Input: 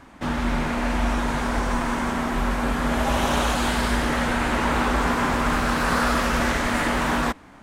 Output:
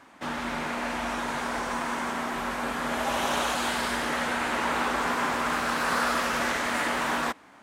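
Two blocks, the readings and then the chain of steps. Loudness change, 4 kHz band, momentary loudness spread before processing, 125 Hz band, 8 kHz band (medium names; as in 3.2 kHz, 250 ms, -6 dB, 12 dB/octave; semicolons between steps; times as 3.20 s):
-4.5 dB, -2.5 dB, 3 LU, -15.5 dB, -2.5 dB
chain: high-pass 460 Hz 6 dB/octave; trim -2.5 dB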